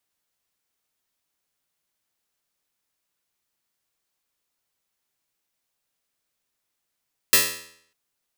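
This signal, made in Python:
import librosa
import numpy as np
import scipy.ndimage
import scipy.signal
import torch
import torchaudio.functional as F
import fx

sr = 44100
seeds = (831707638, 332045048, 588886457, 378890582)

y = fx.pluck(sr, length_s=0.6, note=40, decay_s=0.64, pick=0.11, brightness='bright')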